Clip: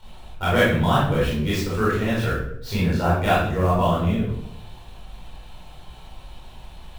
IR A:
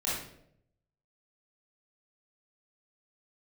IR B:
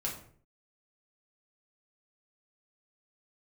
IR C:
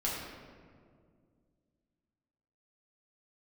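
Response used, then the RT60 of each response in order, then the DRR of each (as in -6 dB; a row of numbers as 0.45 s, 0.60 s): A; 0.75 s, 0.55 s, 2.1 s; -9.0 dB, -3.0 dB, -6.5 dB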